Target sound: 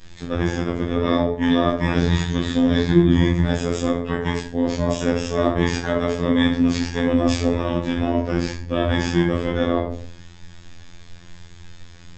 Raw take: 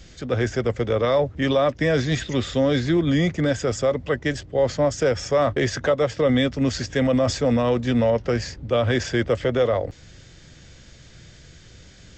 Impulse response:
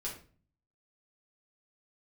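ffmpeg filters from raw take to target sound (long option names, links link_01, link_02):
-filter_complex "[1:a]atrim=start_sample=2205,afade=type=out:start_time=0.37:duration=0.01,atrim=end_sample=16758,asetrate=32193,aresample=44100[link_01];[0:a][link_01]afir=irnorm=-1:irlink=0,asplit=2[link_02][link_03];[link_03]asetrate=22050,aresample=44100,atempo=2,volume=-2dB[link_04];[link_02][link_04]amix=inputs=2:normalize=0,afftfilt=real='hypot(re,im)*cos(PI*b)':imag='0':win_size=2048:overlap=0.75"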